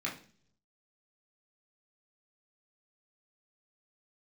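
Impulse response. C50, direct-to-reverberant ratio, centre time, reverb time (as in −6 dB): 10.0 dB, −3.5 dB, 22 ms, 0.50 s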